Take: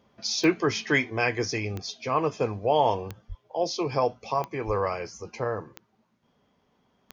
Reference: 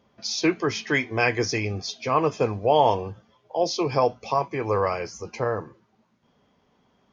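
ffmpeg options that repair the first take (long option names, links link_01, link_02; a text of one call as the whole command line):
ffmpeg -i in.wav -filter_complex "[0:a]adeclick=threshold=4,asplit=3[link_01][link_02][link_03];[link_01]afade=type=out:start_time=3.28:duration=0.02[link_04];[link_02]highpass=frequency=140:width=0.5412,highpass=frequency=140:width=1.3066,afade=type=in:start_time=3.28:duration=0.02,afade=type=out:start_time=3.4:duration=0.02[link_05];[link_03]afade=type=in:start_time=3.4:duration=0.02[link_06];[link_04][link_05][link_06]amix=inputs=3:normalize=0,asplit=3[link_07][link_08][link_09];[link_07]afade=type=out:start_time=4.66:duration=0.02[link_10];[link_08]highpass=frequency=140:width=0.5412,highpass=frequency=140:width=1.3066,afade=type=in:start_time=4.66:duration=0.02,afade=type=out:start_time=4.78:duration=0.02[link_11];[link_09]afade=type=in:start_time=4.78:duration=0.02[link_12];[link_10][link_11][link_12]amix=inputs=3:normalize=0,asetnsamples=nb_out_samples=441:pad=0,asendcmd='1.1 volume volume 3.5dB',volume=0dB" out.wav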